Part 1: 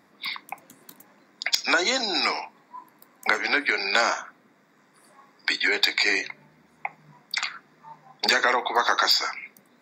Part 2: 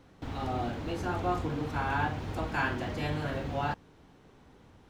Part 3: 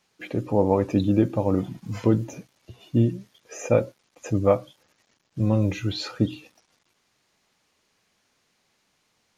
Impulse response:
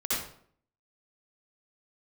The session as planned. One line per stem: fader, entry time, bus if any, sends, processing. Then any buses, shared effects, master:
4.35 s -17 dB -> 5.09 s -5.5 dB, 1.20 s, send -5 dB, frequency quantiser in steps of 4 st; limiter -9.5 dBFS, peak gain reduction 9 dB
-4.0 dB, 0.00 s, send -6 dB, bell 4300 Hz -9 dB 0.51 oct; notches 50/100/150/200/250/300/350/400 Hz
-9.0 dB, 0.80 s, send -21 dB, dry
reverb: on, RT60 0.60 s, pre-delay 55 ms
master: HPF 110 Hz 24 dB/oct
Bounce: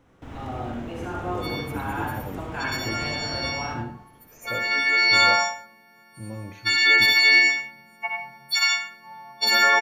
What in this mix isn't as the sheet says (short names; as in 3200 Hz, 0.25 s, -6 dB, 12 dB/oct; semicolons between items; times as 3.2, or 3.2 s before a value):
stem 3 -9.0 dB -> -15.5 dB; master: missing HPF 110 Hz 24 dB/oct